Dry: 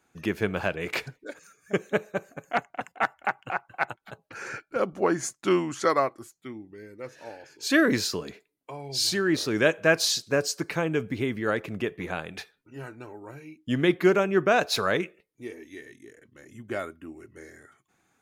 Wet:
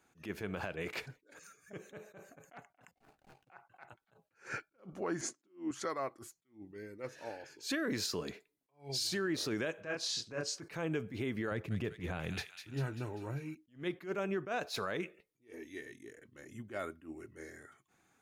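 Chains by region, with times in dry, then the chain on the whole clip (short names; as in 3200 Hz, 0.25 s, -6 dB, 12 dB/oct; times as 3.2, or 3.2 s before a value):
2.91–3.5 median filter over 41 samples + bell 12000 Hz +4.5 dB 2.3 oct + doubler 14 ms -13 dB
5.21–5.71 BPF 230–6500 Hz + bell 300 Hz +14 dB 1.2 oct
9.81–10.61 LPF 6900 Hz + doubler 27 ms -4 dB
11.51–13.55 bell 97 Hz +12 dB 1.9 oct + thin delay 0.197 s, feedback 53%, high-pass 3100 Hz, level -3.5 dB
whole clip: compressor 6:1, threshold -27 dBFS; limiter -24 dBFS; attack slew limiter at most 210 dB/s; gain -2.5 dB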